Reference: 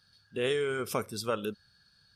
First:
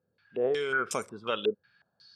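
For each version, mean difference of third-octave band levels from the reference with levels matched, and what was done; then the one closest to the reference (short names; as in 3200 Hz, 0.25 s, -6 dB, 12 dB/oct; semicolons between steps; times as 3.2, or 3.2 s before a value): 5.5 dB: HPF 120 Hz 12 dB/oct; low shelf 230 Hz -7 dB; stepped low-pass 5.5 Hz 470–7500 Hz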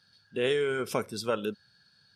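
1.0 dB: HPF 120 Hz 12 dB/oct; high shelf 10000 Hz -10.5 dB; notch 1200 Hz, Q 9; gain +2.5 dB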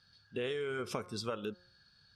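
3.5 dB: LPF 6000 Hz 12 dB/oct; de-hum 178.8 Hz, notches 9; compressor 5:1, threshold -34 dBFS, peak gain reduction 8.5 dB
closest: second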